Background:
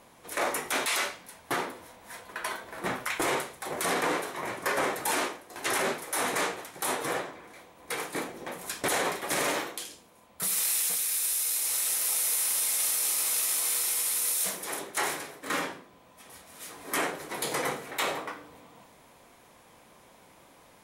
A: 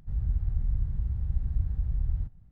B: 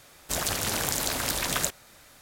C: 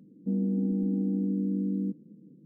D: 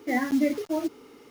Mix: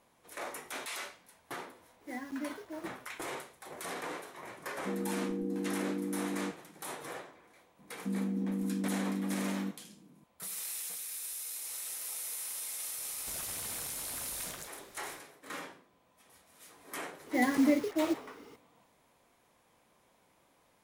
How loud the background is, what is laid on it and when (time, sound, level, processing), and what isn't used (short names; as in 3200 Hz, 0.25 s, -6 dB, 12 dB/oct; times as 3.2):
background -12 dB
2 add D -15.5 dB
4.59 add C -2.5 dB + comb 2.3 ms, depth 74%
7.79 add C -6 dB
12.98 add B -5.5 dB + compressor, threshold -37 dBFS
17.26 add D -2.5 dB
not used: A